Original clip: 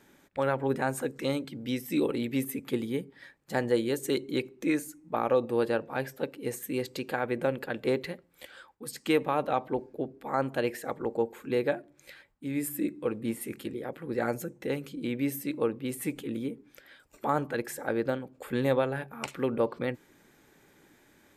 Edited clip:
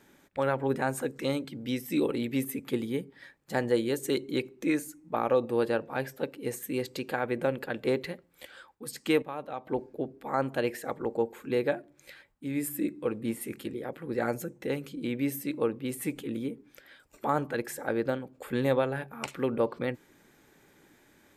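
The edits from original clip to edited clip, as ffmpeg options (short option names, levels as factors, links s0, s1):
-filter_complex "[0:a]asplit=3[s0][s1][s2];[s0]atrim=end=9.222[s3];[s1]atrim=start=9.218:end=9.672,asetpts=PTS-STARTPTS,volume=0.335[s4];[s2]atrim=start=9.668[s5];[s3][s4]acrossfade=d=0.004:c1=hsin:c2=hsin[s6];[s6][s5]acrossfade=d=0.004:c1=hsin:c2=hsin"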